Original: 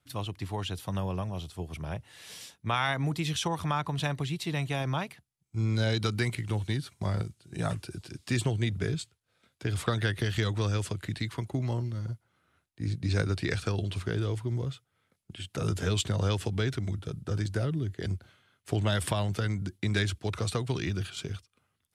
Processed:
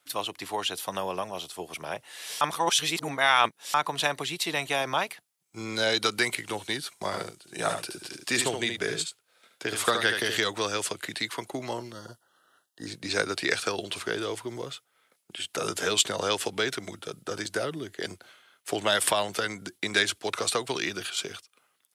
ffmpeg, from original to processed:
ffmpeg -i in.wav -filter_complex "[0:a]asplit=3[link_01][link_02][link_03];[link_01]afade=type=out:start_time=7.11:duration=0.02[link_04];[link_02]aecho=1:1:73:0.473,afade=type=in:start_time=7.11:duration=0.02,afade=type=out:start_time=10.38:duration=0.02[link_05];[link_03]afade=type=in:start_time=10.38:duration=0.02[link_06];[link_04][link_05][link_06]amix=inputs=3:normalize=0,asettb=1/sr,asplit=3[link_07][link_08][link_09];[link_07]atrim=end=11.924[link_10];[link_08]atrim=start=11.92:end=12.87,asetpts=PTS-STARTPTS,afade=type=in:duration=0.004:curve=qsin,afade=type=out:start_time=0.946:duration=0.004:curve=qsin,asuperstop=centerf=2300:order=12:qfactor=2.9[link_11];[link_09]atrim=start=12.866[link_12];[link_10][link_11]acrossfade=duration=0.004:curve1=hsin:curve2=qsin[link_13];[link_13][link_12]acrossfade=duration=0.004:curve1=qsin:curve2=hsin,asplit=3[link_14][link_15][link_16];[link_14]atrim=end=2.412[link_17];[link_15]atrim=start=2.408:end=3.742,asetpts=PTS-STARTPTS,areverse[link_18];[link_16]atrim=start=3.738[link_19];[link_17][link_18]acrossfade=duration=0.004:curve1=hsin:curve2=hsin[link_20];[link_20][link_19]acrossfade=duration=0.004:curve1=hsin:curve2=hsin,highpass=450,highshelf=frequency=6900:gain=5,volume=7.5dB" out.wav

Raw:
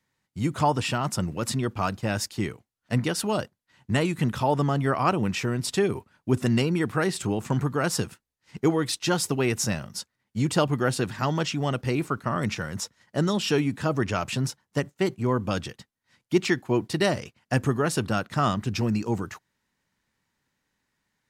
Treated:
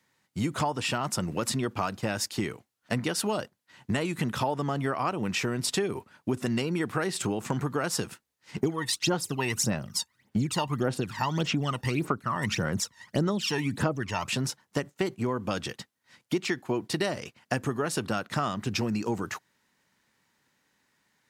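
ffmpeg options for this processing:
ffmpeg -i in.wav -filter_complex "[0:a]asettb=1/sr,asplit=3[link_01][link_02][link_03];[link_01]atrim=end=8.574[link_04];[link_02]atrim=start=8.57:end=14.27,asetpts=PTS-STARTPTS,afade=type=in:duration=0.004:curve=qsin,afade=type=out:start_time=5.696:duration=0.004:curve=qsin,aphaser=in_gain=1:out_gain=1:delay=1.1:decay=0.73:speed=1.7:type=sinusoidal[link_05];[link_03]atrim=start=14.266[link_06];[link_04][link_05]acrossfade=duration=0.004:curve1=hsin:curve2=qsin[link_07];[link_07][link_06]acrossfade=duration=0.004:curve1=qsin:curve2=hsin,highpass=frequency=190:poles=1,acompressor=threshold=-32dB:ratio=6,volume=6.5dB" out.wav

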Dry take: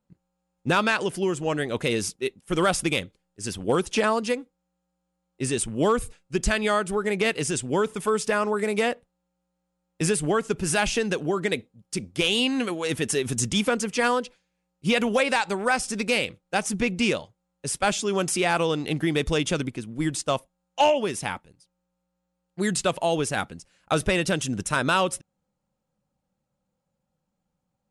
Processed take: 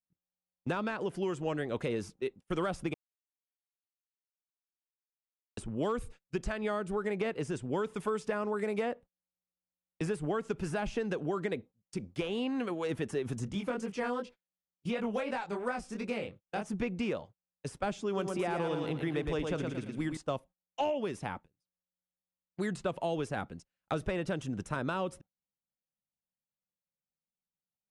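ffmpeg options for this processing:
ffmpeg -i in.wav -filter_complex "[0:a]asplit=3[link_01][link_02][link_03];[link_01]afade=type=out:start_time=13.46:duration=0.02[link_04];[link_02]flanger=delay=20:depth=4.3:speed=2.8,afade=type=in:start_time=13.46:duration=0.02,afade=type=out:start_time=16.68:duration=0.02[link_05];[link_03]afade=type=in:start_time=16.68:duration=0.02[link_06];[link_04][link_05][link_06]amix=inputs=3:normalize=0,asettb=1/sr,asplit=3[link_07][link_08][link_09];[link_07]atrim=end=18.064[link_10];[link_08]atrim=start=18.06:end=20.17,asetpts=PTS-STARTPTS,afade=type=in:duration=0.004:curve=qsin,afade=type=out:start_time=2.106:duration=0.004:curve=qsin,aecho=1:1:113|226|339|452|565:0.531|0.202|0.0767|0.0291|0.0111,atrim=end_sample=93051[link_11];[link_09]atrim=start=20.166[link_12];[link_10][link_11]acrossfade=duration=0.004:curve1=hsin:curve2=qsin[link_13];[link_13][link_12]acrossfade=duration=0.004:curve1=qsin:curve2=hsin,asplit=3[link_14][link_15][link_16];[link_14]atrim=end=2.94,asetpts=PTS-STARTPTS,afade=type=out:start_time=2.936:duration=0.004:curve=hsin[link_17];[link_15]atrim=start=2.94:end=5.57,asetpts=PTS-STARTPTS,volume=0[link_18];[link_16]atrim=start=5.57,asetpts=PTS-STARTPTS,afade=type=in:duration=0.004:curve=hsin[link_19];[link_17][link_18][link_19]concat=n=3:v=0:a=1,agate=range=-21dB:threshold=-42dB:ratio=16:detection=peak,acrossover=split=540|1500[link_20][link_21][link_22];[link_20]acompressor=threshold=-28dB:ratio=4[link_23];[link_21]acompressor=threshold=-32dB:ratio=4[link_24];[link_22]acompressor=threshold=-40dB:ratio=4[link_25];[link_23][link_24][link_25]amix=inputs=3:normalize=0,lowpass=frequency=3500:poles=1,volume=-4.5dB" out.wav

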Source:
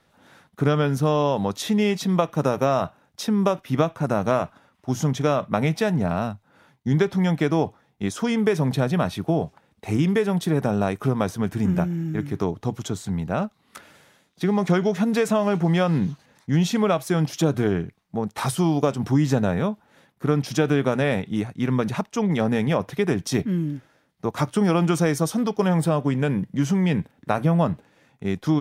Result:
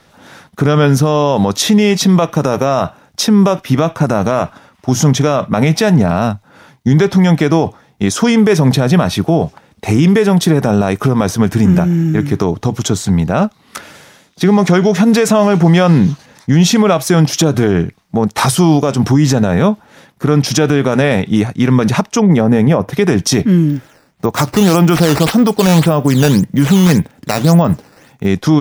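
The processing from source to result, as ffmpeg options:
ffmpeg -i in.wav -filter_complex "[0:a]asettb=1/sr,asplit=3[link_01][link_02][link_03];[link_01]atrim=end=22.204[link_04];[link_02]atrim=start=22.2:end=22.93,asetpts=PTS-STARTPTS,afade=type=in:duration=0.004:curve=qsin,afade=type=out:start_time=0.726:duration=0.004:curve=qsin,equalizer=frequency=4500:width_type=o:width=2.8:gain=-10.5[link_05];[link_03]atrim=start=22.926[link_06];[link_04][link_05]acrossfade=duration=0.004:curve1=hsin:curve2=qsin[link_07];[link_07][link_06]acrossfade=duration=0.004:curve1=qsin:curve2=hsin,asplit=3[link_08][link_09][link_10];[link_08]afade=type=out:start_time=23.68:duration=0.02[link_11];[link_09]acrusher=samples=8:mix=1:aa=0.000001:lfo=1:lforange=12.8:lforate=1.8,afade=type=in:start_time=23.68:duration=0.02,afade=type=out:start_time=28.25:duration=0.02[link_12];[link_10]afade=type=in:start_time=28.25:duration=0.02[link_13];[link_11][link_12][link_13]amix=inputs=3:normalize=0,equalizer=frequency=5600:width_type=o:width=0.61:gain=4,alimiter=level_in=15dB:limit=-1dB:release=50:level=0:latency=1,volume=-1dB" out.wav

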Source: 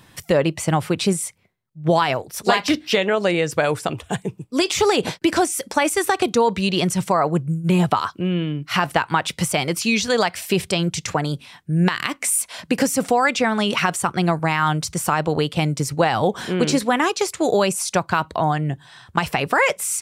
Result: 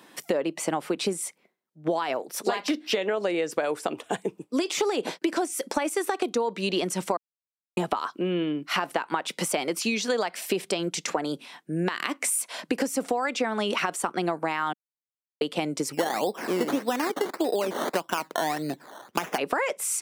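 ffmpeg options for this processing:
ffmpeg -i in.wav -filter_complex "[0:a]asplit=3[link_01][link_02][link_03];[link_01]afade=type=out:start_time=15.92:duration=0.02[link_04];[link_02]acrusher=samples=14:mix=1:aa=0.000001:lfo=1:lforange=8.4:lforate=1.7,afade=type=in:start_time=15.92:duration=0.02,afade=type=out:start_time=19.37:duration=0.02[link_05];[link_03]afade=type=in:start_time=19.37:duration=0.02[link_06];[link_04][link_05][link_06]amix=inputs=3:normalize=0,asplit=5[link_07][link_08][link_09][link_10][link_11];[link_07]atrim=end=7.17,asetpts=PTS-STARTPTS,afade=type=out:start_time=7.166:duration=0.004:curve=hsin[link_12];[link_08]atrim=start=7.17:end=7.77,asetpts=PTS-STARTPTS,volume=0[link_13];[link_09]atrim=start=7.77:end=14.73,asetpts=PTS-STARTPTS,afade=type=in:duration=0.004:curve=hsin,afade=type=out:start_time=6.956:duration=0.004:curve=hsin[link_14];[link_10]atrim=start=14.73:end=15.41,asetpts=PTS-STARTPTS,volume=0[link_15];[link_11]atrim=start=15.41,asetpts=PTS-STARTPTS,afade=type=in:duration=0.004:curve=hsin[link_16];[link_12][link_13][link_14][link_15][link_16]concat=n=5:v=0:a=1,highpass=frequency=250:width=0.5412,highpass=frequency=250:width=1.3066,tiltshelf=frequency=970:gain=3,acompressor=threshold=-23dB:ratio=6" out.wav

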